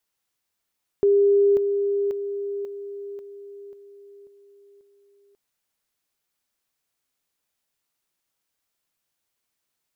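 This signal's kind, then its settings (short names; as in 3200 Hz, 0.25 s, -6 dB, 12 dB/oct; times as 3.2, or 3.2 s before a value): level ladder 402 Hz -14 dBFS, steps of -6 dB, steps 8, 0.54 s 0.00 s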